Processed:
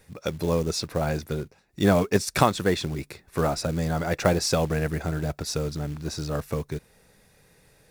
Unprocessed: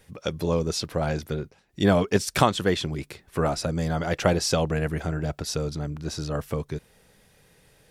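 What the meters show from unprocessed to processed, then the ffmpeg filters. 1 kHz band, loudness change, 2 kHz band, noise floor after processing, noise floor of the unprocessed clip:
0.0 dB, 0.0 dB, 0.0 dB, -60 dBFS, -60 dBFS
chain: -af "bandreject=f=3.1k:w=5.8,acrusher=bits=5:mode=log:mix=0:aa=0.000001"

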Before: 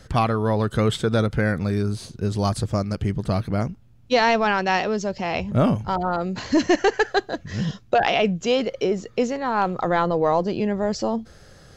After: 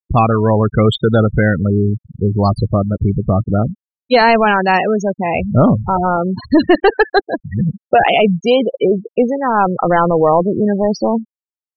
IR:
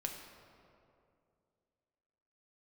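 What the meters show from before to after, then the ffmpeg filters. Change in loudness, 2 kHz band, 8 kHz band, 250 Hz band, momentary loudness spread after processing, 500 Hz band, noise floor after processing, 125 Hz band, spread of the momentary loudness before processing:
+8.0 dB, +7.0 dB, n/a, +8.5 dB, 6 LU, +8.5 dB, under -85 dBFS, +8.5 dB, 7 LU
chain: -af "acontrast=85,afftfilt=real='re*gte(hypot(re,im),0.178)':imag='im*gte(hypot(re,im),0.178)':win_size=1024:overlap=0.75,volume=2dB"

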